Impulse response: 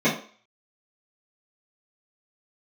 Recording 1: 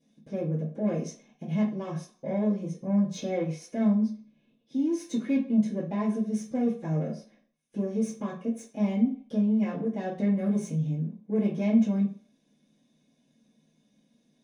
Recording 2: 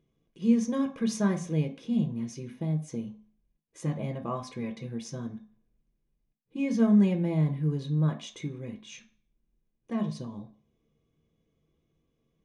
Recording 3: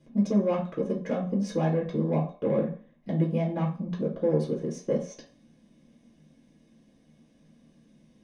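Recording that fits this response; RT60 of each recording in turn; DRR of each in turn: 1; 0.45, 0.45, 0.45 s; -13.0, 3.0, -5.0 dB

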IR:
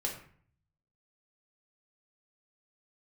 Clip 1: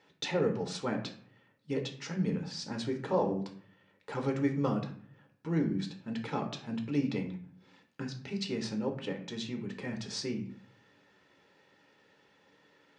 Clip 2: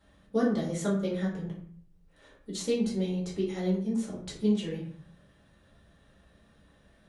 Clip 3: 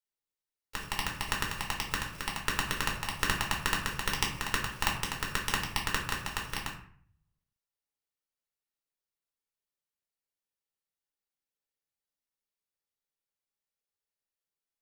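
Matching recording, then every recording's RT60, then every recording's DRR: 3; 0.50, 0.50, 0.50 s; 3.5, -6.0, -1.5 dB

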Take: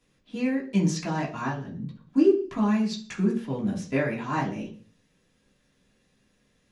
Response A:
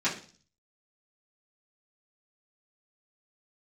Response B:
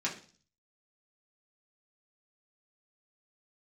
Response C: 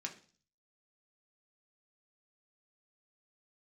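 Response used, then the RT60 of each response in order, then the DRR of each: B; 0.40, 0.40, 0.40 s; -11.0, -5.5, 1.0 dB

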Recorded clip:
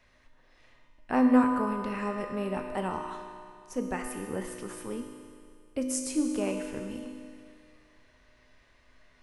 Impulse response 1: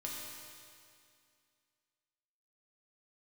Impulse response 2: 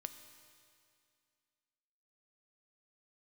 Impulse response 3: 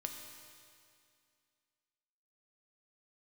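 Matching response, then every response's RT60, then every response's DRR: 3; 2.3, 2.3, 2.3 s; -4.0, 8.0, 2.5 dB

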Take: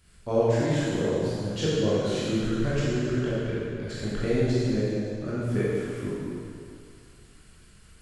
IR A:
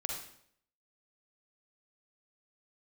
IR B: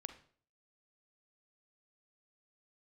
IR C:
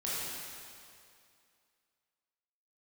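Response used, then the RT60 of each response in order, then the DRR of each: C; 0.65, 0.50, 2.4 s; 0.0, 8.5, -9.0 dB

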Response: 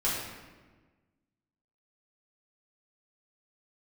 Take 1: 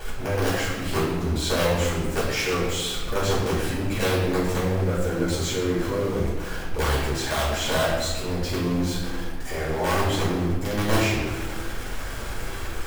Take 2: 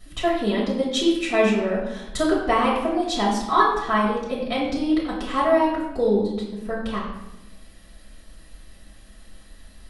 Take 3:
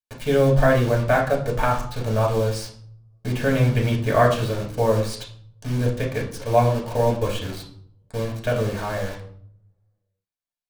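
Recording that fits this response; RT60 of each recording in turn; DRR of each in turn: 1; 1.4, 0.95, 0.60 s; -9.0, -7.0, -2.5 dB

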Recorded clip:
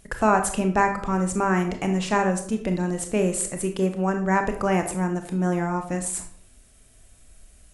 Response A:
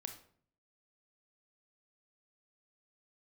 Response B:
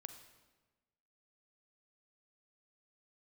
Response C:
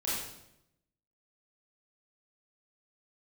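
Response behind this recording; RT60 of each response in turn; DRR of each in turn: A; 0.55, 1.2, 0.80 s; 5.5, 7.5, -9.0 dB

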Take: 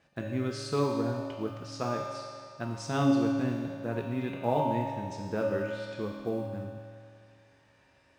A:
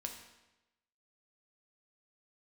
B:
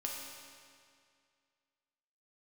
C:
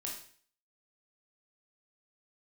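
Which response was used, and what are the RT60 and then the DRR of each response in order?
B; 1.0, 2.2, 0.50 s; 2.5, -2.5, -2.5 dB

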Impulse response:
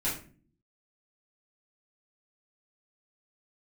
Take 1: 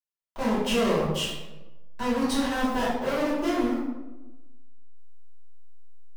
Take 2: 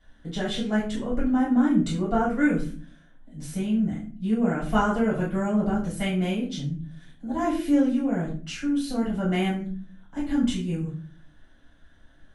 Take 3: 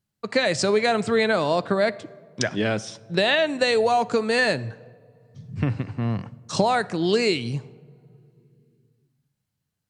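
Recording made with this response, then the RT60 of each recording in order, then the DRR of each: 2; 1.1 s, 0.40 s, not exponential; -10.5, -9.0, 16.5 dB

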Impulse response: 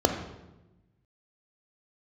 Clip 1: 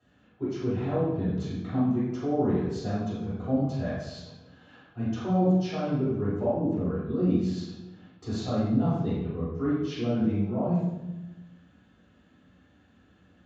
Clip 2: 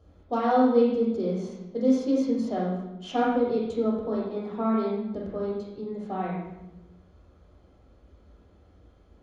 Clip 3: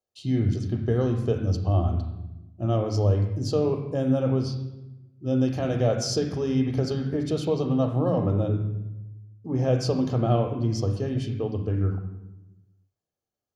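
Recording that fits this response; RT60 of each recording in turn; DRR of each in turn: 3; 1.0, 1.0, 1.0 s; -12.0, -3.5, 6.0 dB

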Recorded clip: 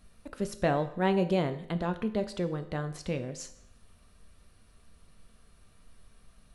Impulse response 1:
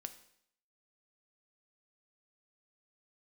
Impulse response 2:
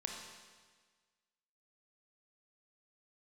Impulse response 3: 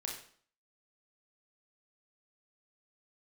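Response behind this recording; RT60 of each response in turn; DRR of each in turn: 1; 0.70, 1.5, 0.50 s; 8.5, 0.5, -1.0 dB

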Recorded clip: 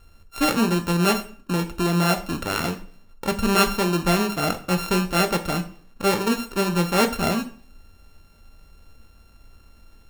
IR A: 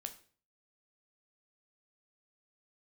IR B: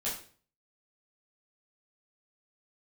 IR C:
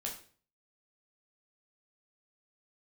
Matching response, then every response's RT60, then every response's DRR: A; 0.45, 0.45, 0.45 s; 6.5, -8.5, -1.5 dB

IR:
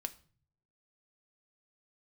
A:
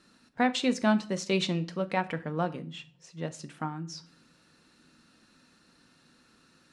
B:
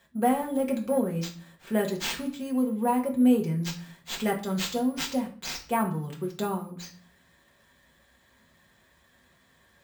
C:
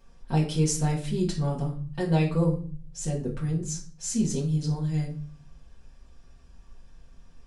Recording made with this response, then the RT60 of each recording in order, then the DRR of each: A; 0.45, 0.45, 0.45 s; 8.5, -0.5, -5.0 dB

